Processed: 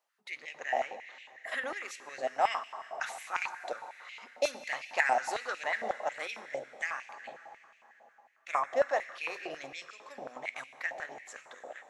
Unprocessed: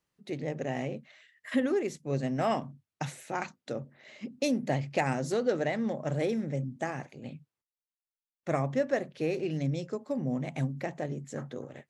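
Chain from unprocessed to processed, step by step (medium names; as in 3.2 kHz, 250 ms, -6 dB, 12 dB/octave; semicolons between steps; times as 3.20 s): plate-style reverb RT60 3.7 s, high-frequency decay 0.9×, DRR 10 dB; step-sequenced high-pass 11 Hz 700–2500 Hz; trim -1 dB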